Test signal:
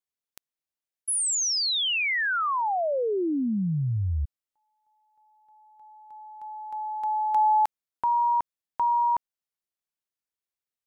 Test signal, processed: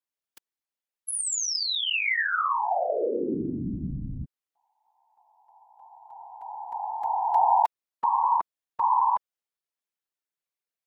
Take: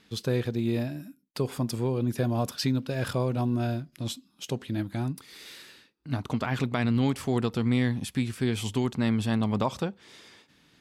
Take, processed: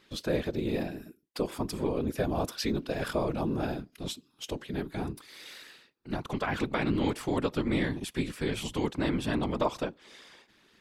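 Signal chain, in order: whisper effect; tone controls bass -7 dB, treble -3 dB

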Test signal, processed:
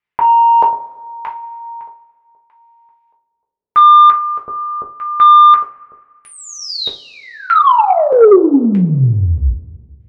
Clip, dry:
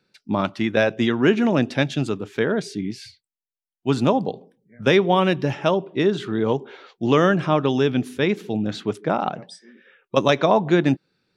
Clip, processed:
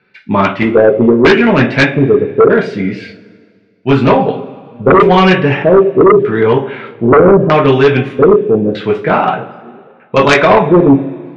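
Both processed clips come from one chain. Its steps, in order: LFO low-pass square 0.8 Hz 470–2200 Hz; two-slope reverb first 0.28 s, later 1.9 s, from -22 dB, DRR -2 dB; sine folder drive 9 dB, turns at 3 dBFS; trim -4.5 dB

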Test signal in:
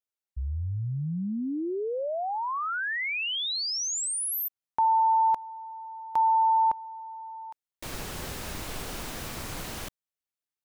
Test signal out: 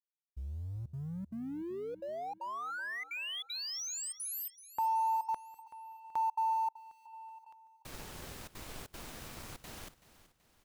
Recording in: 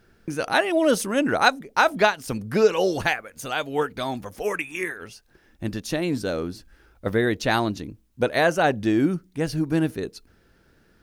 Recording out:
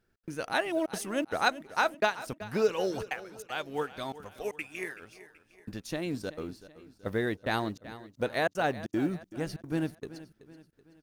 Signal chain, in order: companding laws mixed up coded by A; trance gate "xx.xxxxxxxx.xx" 193 bpm -60 dB; feedback delay 379 ms, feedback 46%, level -16 dB; trim -8 dB

